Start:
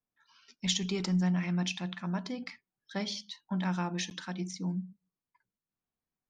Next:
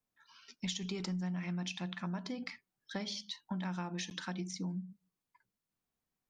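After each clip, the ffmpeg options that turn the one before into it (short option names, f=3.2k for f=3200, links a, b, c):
-af "acompressor=threshold=-39dB:ratio=5,volume=2.5dB"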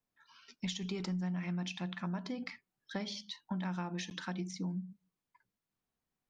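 -af "highshelf=f=4.7k:g=-6.5,volume=1dB"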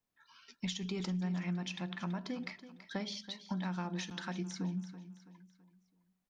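-af "aecho=1:1:330|660|990|1320:0.2|0.0818|0.0335|0.0138"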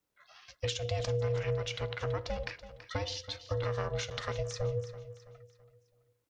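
-af "aeval=exprs='val(0)*sin(2*PI*300*n/s)':c=same,volume=7dB"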